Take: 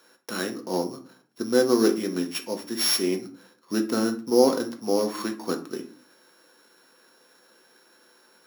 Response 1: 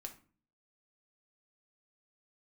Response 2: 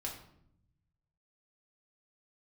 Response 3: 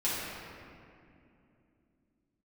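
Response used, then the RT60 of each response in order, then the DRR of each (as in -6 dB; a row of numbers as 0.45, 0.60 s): 1; 0.40, 0.70, 2.7 s; 3.5, -2.0, -9.5 dB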